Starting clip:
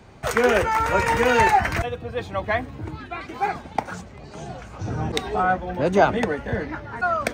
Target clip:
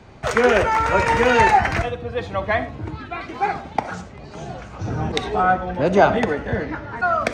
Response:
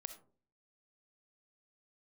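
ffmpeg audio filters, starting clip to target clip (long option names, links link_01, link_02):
-filter_complex "[0:a]asplit=2[link_01][link_02];[1:a]atrim=start_sample=2205,lowpass=7600[link_03];[link_02][link_03]afir=irnorm=-1:irlink=0,volume=12.5dB[link_04];[link_01][link_04]amix=inputs=2:normalize=0,volume=-8.5dB"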